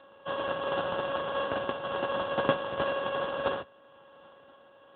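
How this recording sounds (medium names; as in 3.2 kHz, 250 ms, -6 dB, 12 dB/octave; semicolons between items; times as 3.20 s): a buzz of ramps at a fixed pitch in blocks of 16 samples; tremolo triangle 1 Hz, depth 30%; aliases and images of a low sample rate 2.2 kHz, jitter 0%; AMR-NB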